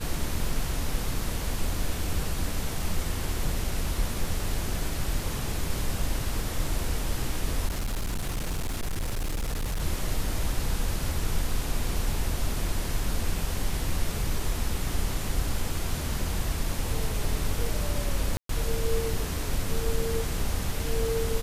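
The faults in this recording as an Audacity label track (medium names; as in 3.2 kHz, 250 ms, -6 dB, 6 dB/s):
7.660000	9.820000	clipped -25.5 dBFS
18.370000	18.490000	dropout 123 ms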